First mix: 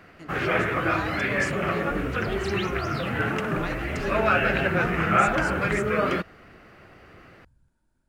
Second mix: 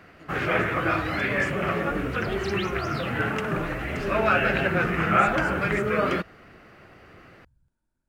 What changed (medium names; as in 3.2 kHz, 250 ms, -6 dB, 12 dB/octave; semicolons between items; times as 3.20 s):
speech -7.5 dB; second sound: send off